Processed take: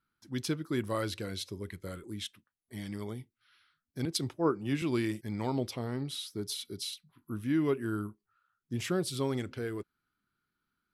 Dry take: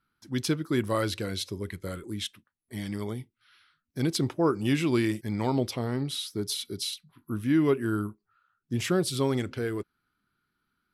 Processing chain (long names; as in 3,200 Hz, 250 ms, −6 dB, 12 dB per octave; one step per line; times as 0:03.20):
0:04.05–0:04.82: multiband upward and downward expander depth 100%
level −5.5 dB